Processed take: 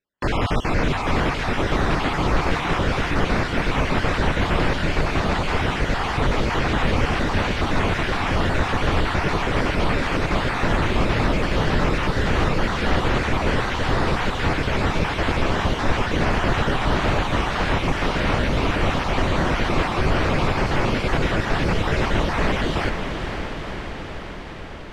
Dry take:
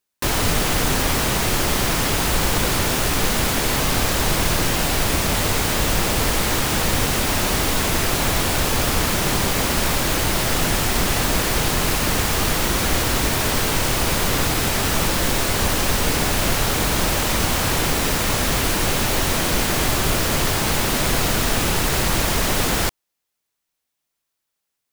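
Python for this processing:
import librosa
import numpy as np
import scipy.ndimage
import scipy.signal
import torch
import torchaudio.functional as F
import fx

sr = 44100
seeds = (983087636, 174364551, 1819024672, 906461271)

y = fx.spec_dropout(x, sr, seeds[0], share_pct=32)
y = scipy.signal.sosfilt(scipy.signal.butter(2, 2500.0, 'lowpass', fs=sr, output='sos'), y)
y = fx.echo_diffused(y, sr, ms=511, feedback_pct=71, wet_db=-7.0)
y = F.gain(torch.from_numpy(y), 1.0).numpy()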